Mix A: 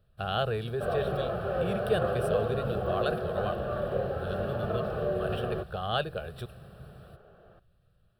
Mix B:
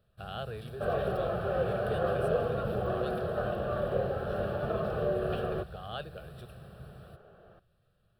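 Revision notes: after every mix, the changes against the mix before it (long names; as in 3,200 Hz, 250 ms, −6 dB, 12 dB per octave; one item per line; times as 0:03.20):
speech −10.0 dB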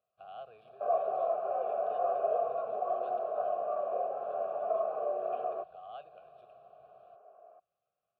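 second sound: add loudspeaker in its box 220–2,600 Hz, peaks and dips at 260 Hz +9 dB, 430 Hz +7 dB, 650 Hz +9 dB, 990 Hz +10 dB, 2,100 Hz +5 dB
master: add formant filter a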